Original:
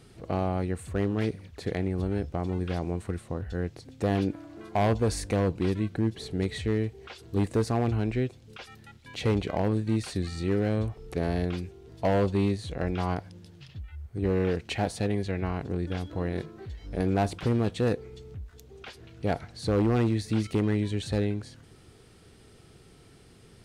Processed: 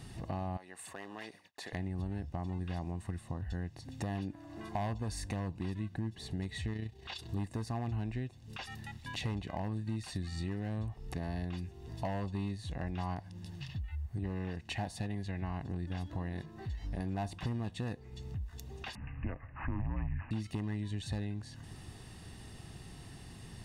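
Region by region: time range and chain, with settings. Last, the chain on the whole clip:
0.57–1.73 s: high-pass 540 Hz + expander -51 dBFS + compression 1.5:1, threshold -50 dBFS
6.73–7.29 s: peaking EQ 3.7 kHz +7.5 dB 0.91 oct + AM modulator 30 Hz, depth 35%
18.95–20.31 s: frequency shift -190 Hz + careless resampling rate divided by 8×, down none, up filtered
whole clip: compression 3:1, threshold -44 dBFS; comb 1.1 ms, depth 60%; trim +3 dB

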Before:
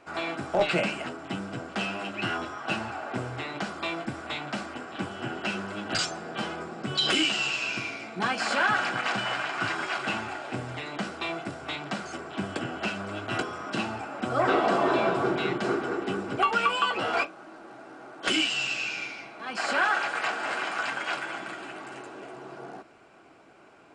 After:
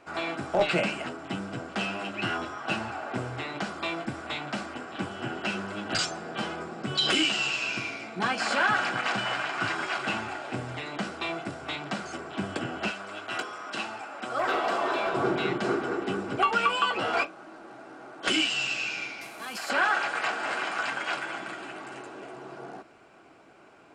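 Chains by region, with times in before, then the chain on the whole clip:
12.91–15.14 s: high-pass 770 Hz 6 dB/octave + hard clipper -20.5 dBFS
19.21–19.70 s: CVSD coder 64 kbps + treble shelf 3.3 kHz +9.5 dB + compression 5:1, threshold -33 dBFS
whole clip: none

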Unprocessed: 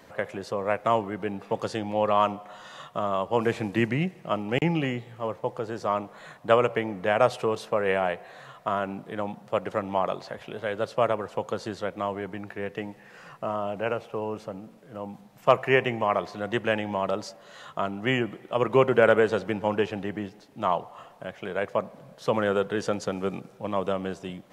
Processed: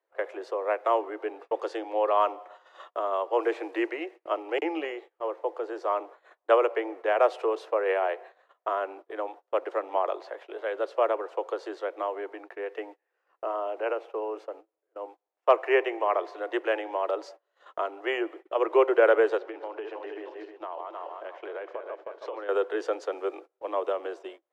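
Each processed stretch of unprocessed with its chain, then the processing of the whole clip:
19.37–22.49 s: backward echo that repeats 155 ms, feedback 54%, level -6.5 dB + low-pass 5.4 kHz + compression 8:1, threshold -30 dBFS
whole clip: steep high-pass 320 Hz 96 dB/octave; gate -43 dBFS, range -28 dB; low-pass 1.7 kHz 6 dB/octave

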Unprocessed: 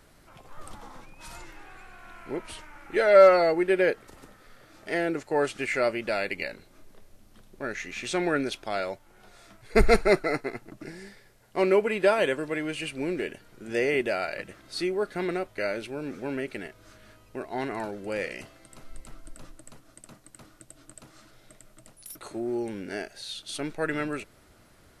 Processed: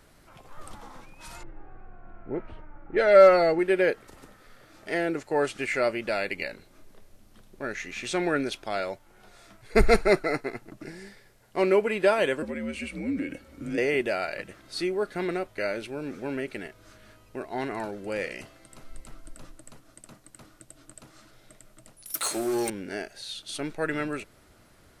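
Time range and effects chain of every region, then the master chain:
1.43–3.59 s: band-stop 1 kHz, Q 9.4 + level-controlled noise filter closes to 730 Hz, open at -16.5 dBFS + bass shelf 160 Hz +7 dB
12.42–13.78 s: frequency shift -83 Hz + compression 5:1, threshold -35 dBFS + small resonant body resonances 270/530/2200 Hz, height 12 dB
22.14–22.70 s: tilt EQ +4 dB/octave + hum notches 50/100/150/200/250/300/350/400/450 Hz + waveshaping leveller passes 3
whole clip: none

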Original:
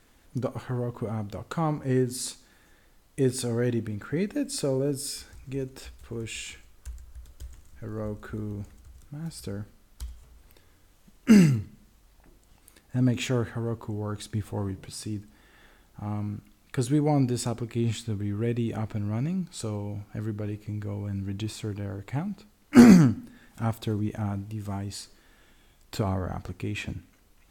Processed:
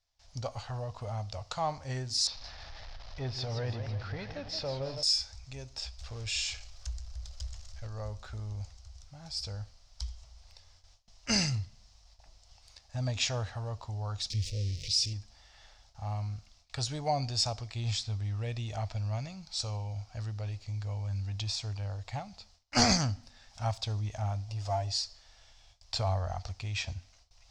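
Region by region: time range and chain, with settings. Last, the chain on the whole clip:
2.27–5.03 s: jump at every zero crossing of -38 dBFS + distance through air 270 m + modulated delay 166 ms, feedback 55%, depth 193 cents, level -9 dB
5.98–7.87 s: companding laws mixed up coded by mu + band-stop 930 Hz, Q 11
14.30–15.13 s: jump at every zero crossing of -35 dBFS + inverse Chebyshev band-stop 720–1500 Hz
24.48–24.92 s: peaking EQ 640 Hz +8 dB 1.1 oct + comb 7.1 ms, depth 62%
whole clip: gate with hold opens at -49 dBFS; FFT filter 100 Hz 0 dB, 170 Hz -16 dB, 370 Hz -21 dB, 670 Hz +2 dB, 1.5 kHz -7 dB, 3.4 kHz +2 dB, 5.3 kHz +13 dB, 12 kHz -23 dB

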